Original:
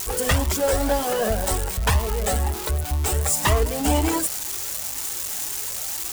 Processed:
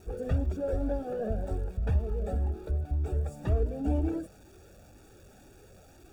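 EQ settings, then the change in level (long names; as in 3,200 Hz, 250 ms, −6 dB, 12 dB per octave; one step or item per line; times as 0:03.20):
moving average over 43 samples
−5.5 dB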